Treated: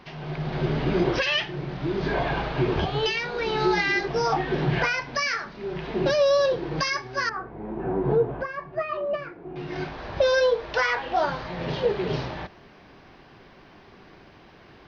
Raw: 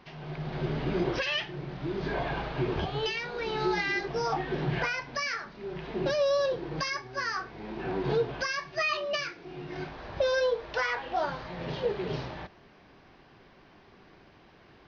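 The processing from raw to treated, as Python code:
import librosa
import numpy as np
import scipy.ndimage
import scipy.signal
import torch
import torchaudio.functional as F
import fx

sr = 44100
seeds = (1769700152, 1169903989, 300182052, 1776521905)

y = fx.lowpass(x, sr, hz=1000.0, slope=12, at=(7.29, 9.56))
y = F.gain(torch.from_numpy(y), 6.0).numpy()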